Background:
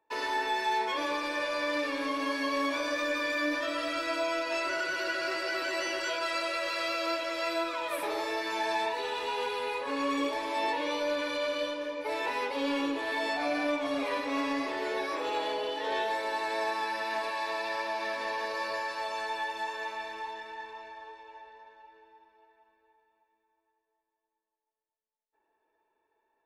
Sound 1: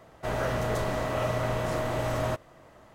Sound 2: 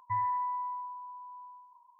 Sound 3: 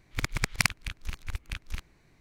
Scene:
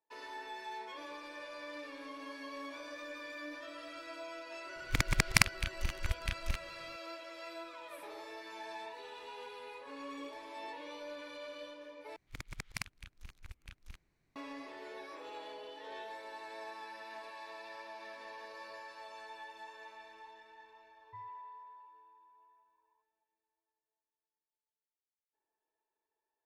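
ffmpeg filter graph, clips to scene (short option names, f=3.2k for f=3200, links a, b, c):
-filter_complex "[3:a]asplit=2[a][b];[0:a]volume=-15dB,asplit=2[c][d];[c]atrim=end=12.164[e];[b]atrim=end=2.2,asetpts=PTS-STARTPTS,volume=-15.5dB[f];[d]atrim=start=14.356[g];[a]atrim=end=2.2,asetpts=PTS-STARTPTS,afade=t=in:d=0.004:c=hsin,afade=t=out:st=2.196:d=0.004:c=hsin,adelay=4760[h];[2:a]atrim=end=1.99,asetpts=PTS-STARTPTS,volume=-17.5dB,afade=t=in:d=0.004:c=hsin,afade=t=out:st=1.986:d=0.004:c=hsin,adelay=21030[i];[e][f]acrossfade=d=0.004:c1=hsin:c2=hsin[j];[j][g]acrossfade=d=0.004:c1=hsin:c2=hsin[k];[k][h][i]amix=inputs=3:normalize=0"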